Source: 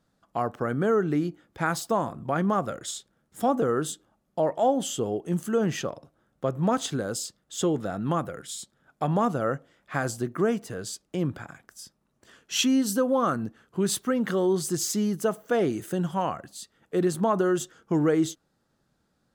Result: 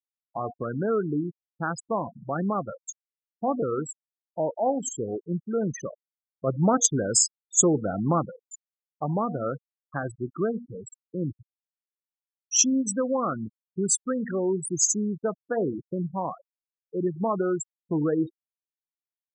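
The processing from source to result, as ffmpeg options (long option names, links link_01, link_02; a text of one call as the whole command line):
ffmpeg -i in.wav -filter_complex "[0:a]asplit=3[link_01][link_02][link_03];[link_01]afade=type=out:start_time=6.46:duration=0.02[link_04];[link_02]acontrast=33,afade=type=in:start_time=6.46:duration=0.02,afade=type=out:start_time=8.25:duration=0.02[link_05];[link_03]afade=type=in:start_time=8.25:duration=0.02[link_06];[link_04][link_05][link_06]amix=inputs=3:normalize=0,asplit=2[link_07][link_08];[link_07]atrim=end=16.44,asetpts=PTS-STARTPTS,afade=type=out:start_time=16.436:duration=0.004:curve=hsin[link_09];[link_08]atrim=start=16.44,asetpts=PTS-STARTPTS,afade=type=in:duration=0.62:curve=qua[link_10];[link_09][link_10]concat=n=2:v=0:a=1,bandreject=frequency=238.9:width_type=h:width=4,bandreject=frequency=477.8:width_type=h:width=4,bandreject=frequency=716.7:width_type=h:width=4,bandreject=frequency=955.6:width_type=h:width=4,afftfilt=real='re*gte(hypot(re,im),0.0794)':imag='im*gte(hypot(re,im),0.0794)':win_size=1024:overlap=0.75,highshelf=frequency=4700:width_type=q:width=3:gain=9,volume=-2dB" out.wav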